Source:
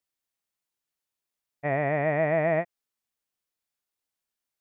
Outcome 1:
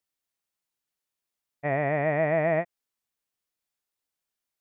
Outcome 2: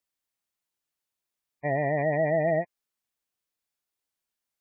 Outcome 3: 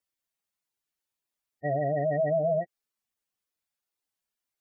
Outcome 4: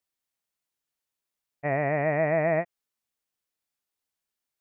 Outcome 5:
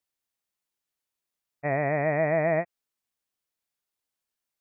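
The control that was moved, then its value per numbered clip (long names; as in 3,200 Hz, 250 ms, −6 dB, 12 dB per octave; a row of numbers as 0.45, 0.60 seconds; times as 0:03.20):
gate on every frequency bin, under each frame's peak: −60, −20, −10, −45, −35 decibels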